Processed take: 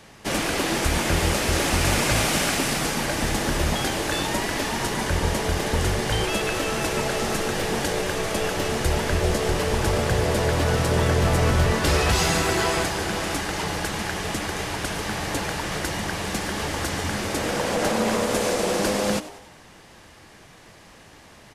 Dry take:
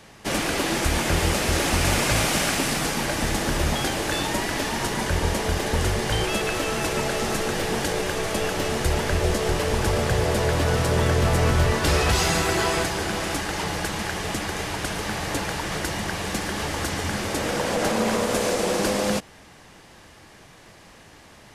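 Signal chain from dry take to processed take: frequency-shifting echo 95 ms, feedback 49%, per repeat +100 Hz, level -15.5 dB

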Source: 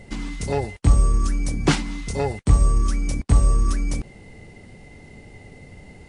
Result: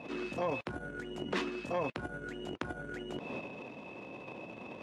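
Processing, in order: varispeed +26%; transient shaper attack -10 dB, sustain +11 dB; compressor 4:1, threshold -30 dBFS, peak gain reduction 16.5 dB; BPF 260–2900 Hz; gain +1 dB

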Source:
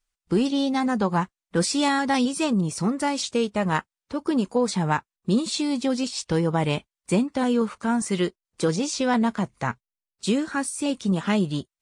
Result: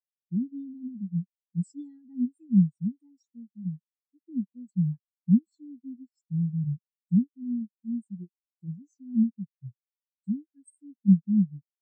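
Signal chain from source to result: ten-band EQ 125 Hz +5 dB, 500 Hz -11 dB, 1000 Hz -10 dB, 2000 Hz -4 dB, 8000 Hz +10 dB; spectral expander 4:1; gain -1.5 dB

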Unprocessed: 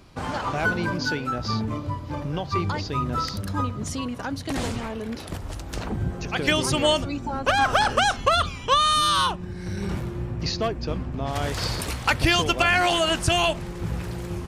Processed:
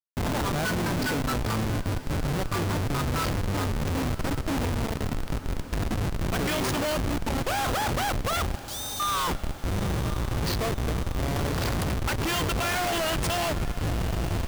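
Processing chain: Schmitt trigger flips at -27 dBFS; 8.55–9 inverse Chebyshev high-pass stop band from 1800 Hz, stop band 40 dB; diffused feedback echo 1.018 s, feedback 68%, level -15 dB; gain -1.5 dB

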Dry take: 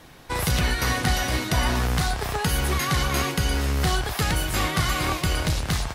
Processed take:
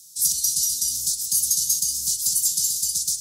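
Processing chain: inverse Chebyshev band-stop 650–1700 Hz, stop band 80 dB; tone controls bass -15 dB, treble +14 dB; time stretch by phase-locked vocoder 0.54×; weighting filter D; gain -1.5 dB

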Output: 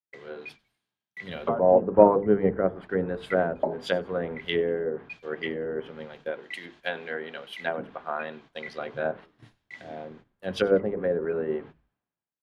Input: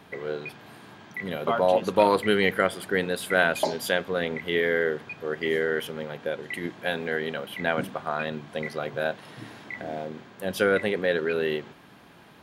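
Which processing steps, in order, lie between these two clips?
treble ducked by the level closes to 640 Hz, closed at -20.5 dBFS; notches 50/100/150/200/250/300/350/400/450/500 Hz; gate -41 dBFS, range -16 dB; 6.31–8.68 low shelf 200 Hz -11 dB; frequency-shifting echo 96 ms, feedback 49%, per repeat -110 Hz, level -22 dB; three-band expander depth 100%

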